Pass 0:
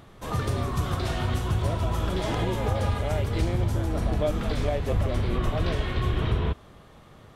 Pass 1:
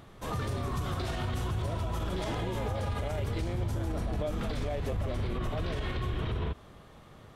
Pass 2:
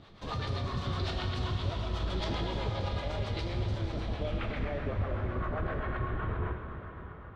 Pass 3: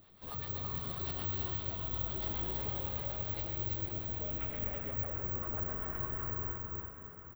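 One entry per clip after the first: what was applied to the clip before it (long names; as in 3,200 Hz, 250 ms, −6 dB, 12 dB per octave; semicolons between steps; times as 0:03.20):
brickwall limiter −22.5 dBFS, peak gain reduction 8.5 dB; level −2 dB
two-band tremolo in antiphase 7.8 Hz, depth 70%, crossover 530 Hz; low-pass filter sweep 4,300 Hz → 1,500 Hz, 0:03.93–0:04.93; dense smooth reverb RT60 4.4 s, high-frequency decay 0.95×, DRR 3.5 dB
flanger 1.8 Hz, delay 6.9 ms, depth 6 ms, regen −77%; single-tap delay 329 ms −4 dB; bad sample-rate conversion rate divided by 2×, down filtered, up zero stuff; level −5.5 dB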